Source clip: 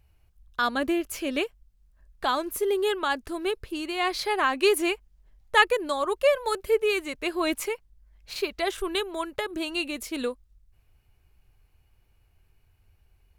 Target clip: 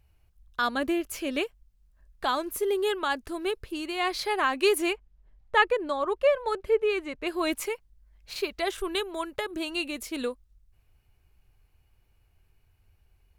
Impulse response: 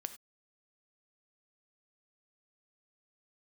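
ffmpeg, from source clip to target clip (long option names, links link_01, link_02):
-filter_complex "[0:a]asettb=1/sr,asplit=3[link_01][link_02][link_03];[link_01]atrim=end=4.934[link_04];[link_02]atrim=start=4.93:end=7.27,asetpts=PTS-STARTPTS,afade=type=in:duration=0.004:curve=qsin,afade=type=out:start_time=2.336:duration=0.004:curve=qsin,aemphasis=mode=reproduction:type=75fm[link_05];[link_03]atrim=start=7.266[link_06];[link_04][link_05]acrossfade=duration=0.004:curve1=hsin:curve2=qsin[link_07];[link_07][link_06]acrossfade=duration=0.004:curve1=qsin:curve2=hsin,volume=-1.5dB"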